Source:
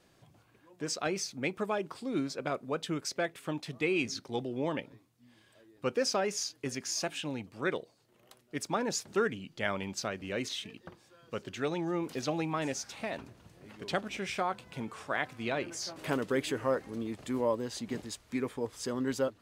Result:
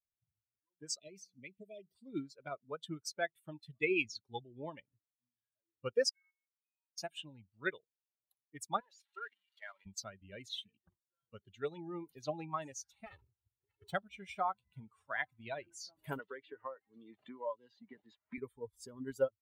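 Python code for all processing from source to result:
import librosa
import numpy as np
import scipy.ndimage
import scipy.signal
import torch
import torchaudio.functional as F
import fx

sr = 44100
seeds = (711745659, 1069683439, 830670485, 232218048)

y = fx.chain(x, sr, fx.cheby1_bandstop(low_hz=660.0, high_hz=1900.0, order=5),
    fx.comb_fb(f0_hz=96.0, decay_s=1.7, harmonics='all', damping=0.0, mix_pct=40),
    fx.band_squash(depth_pct=70), at=(1.01, 1.95))
y = fx.chain(y, sr, fx.stiff_resonator(f0_hz=300.0, decay_s=0.81, stiffness=0.002),
    fx.freq_invert(carrier_hz=2800),
    fx.level_steps(step_db=11), at=(6.09, 6.98))
y = fx.chain(y, sr, fx.crossing_spikes(level_db=-22.5),
    fx.bandpass_edges(low_hz=650.0, high_hz=2700.0),
    fx.level_steps(step_db=9), at=(8.8, 9.86))
y = fx.chain(y, sr, fx.lower_of_two(delay_ms=2.3),
    fx.highpass(hz=80.0, slope=12), at=(13.06, 13.93))
y = fx.chain(y, sr, fx.highpass(hz=510.0, slope=6),
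    fx.air_absorb(metres=180.0),
    fx.band_squash(depth_pct=100), at=(16.19, 18.38))
y = fx.bin_expand(y, sr, power=2.0)
y = fx.dynamic_eq(y, sr, hz=240.0, q=1.3, threshold_db=-52.0, ratio=4.0, max_db=-7)
y = fx.upward_expand(y, sr, threshold_db=-49.0, expansion=1.5)
y = y * 10.0 ** (4.0 / 20.0)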